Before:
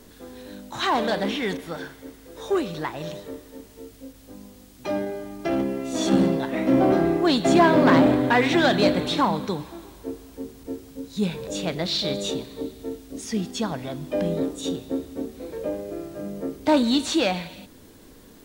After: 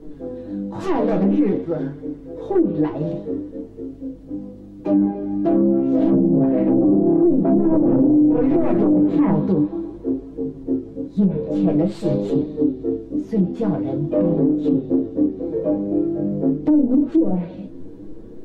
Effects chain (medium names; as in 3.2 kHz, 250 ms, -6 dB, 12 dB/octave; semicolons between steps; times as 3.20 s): self-modulated delay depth 0.49 ms; tilt EQ -3.5 dB/octave; in parallel at -3.5 dB: saturation -16.5 dBFS, distortion -9 dB; on the sum: peaking EQ 360 Hz +14 dB 2.1 oct; on a send at -2 dB: reverberation, pre-delay 6 ms; on the sum: flange 0.48 Hz, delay 6.3 ms, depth 5.4 ms, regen +30%; low-pass that closes with the level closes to 520 Hz, closed at 3.5 dBFS; peak limiter 0 dBFS, peak gain reduction 11 dB; trim -9 dB